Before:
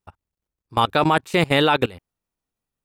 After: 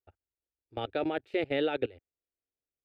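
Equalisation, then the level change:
high-pass filter 100 Hz 6 dB per octave
high-frequency loss of the air 410 metres
phaser with its sweep stopped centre 430 Hz, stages 4
−7.0 dB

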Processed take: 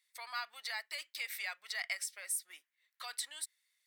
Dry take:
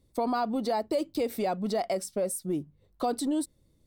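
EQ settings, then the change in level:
four-pole ladder high-pass 1,700 Hz, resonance 60%
+9.5 dB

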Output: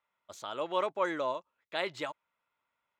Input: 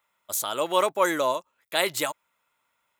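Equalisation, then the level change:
high-frequency loss of the air 170 metres
−7.5 dB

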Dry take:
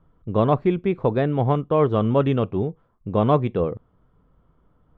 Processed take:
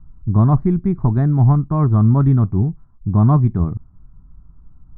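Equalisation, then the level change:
spectral tilt −4 dB per octave
phaser with its sweep stopped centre 1,200 Hz, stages 4
0.0 dB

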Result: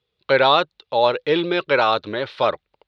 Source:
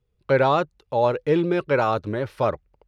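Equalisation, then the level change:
high-pass filter 540 Hz 6 dB per octave
low-pass with resonance 3,800 Hz, resonance Q 3.7
+5.0 dB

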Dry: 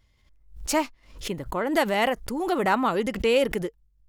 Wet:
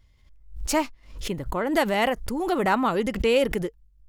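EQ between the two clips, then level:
low-shelf EQ 120 Hz +7 dB
0.0 dB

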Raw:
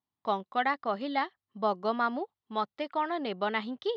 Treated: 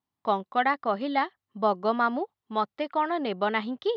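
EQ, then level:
high-shelf EQ 4,000 Hz −6.5 dB
+4.5 dB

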